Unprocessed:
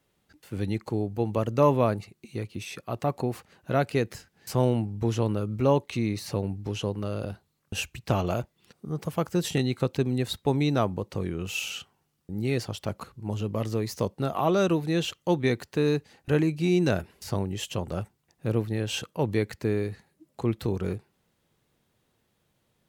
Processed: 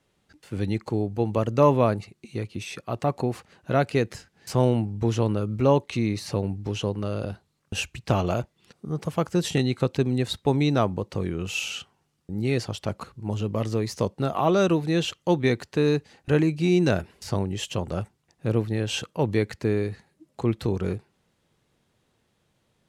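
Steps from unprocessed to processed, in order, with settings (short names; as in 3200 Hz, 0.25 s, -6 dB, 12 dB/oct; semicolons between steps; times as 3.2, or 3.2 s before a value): LPF 9800 Hz 12 dB/oct; gain +2.5 dB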